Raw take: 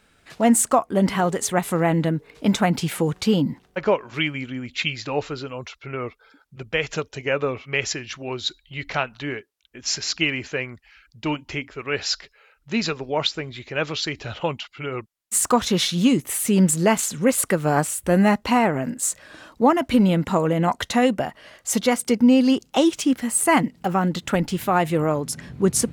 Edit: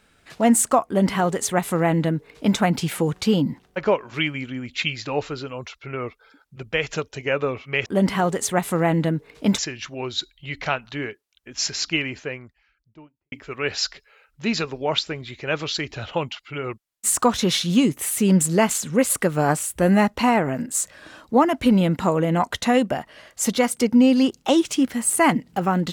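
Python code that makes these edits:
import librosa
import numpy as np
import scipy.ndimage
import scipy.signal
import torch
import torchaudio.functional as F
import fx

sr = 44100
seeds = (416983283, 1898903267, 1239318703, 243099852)

y = fx.studio_fade_out(x, sr, start_s=10.02, length_s=1.58)
y = fx.edit(y, sr, fx.duplicate(start_s=0.86, length_s=1.72, to_s=7.86), tone=tone)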